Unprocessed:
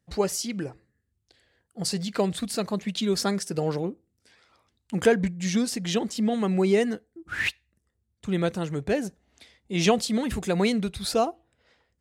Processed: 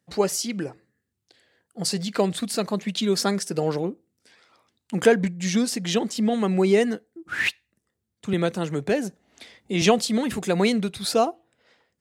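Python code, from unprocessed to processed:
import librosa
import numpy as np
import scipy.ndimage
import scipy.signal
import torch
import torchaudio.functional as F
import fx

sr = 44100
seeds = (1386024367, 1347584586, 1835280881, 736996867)

y = scipy.signal.sosfilt(scipy.signal.butter(2, 150.0, 'highpass', fs=sr, output='sos'), x)
y = fx.band_squash(y, sr, depth_pct=40, at=(8.33, 9.82))
y = y * 10.0 ** (3.0 / 20.0)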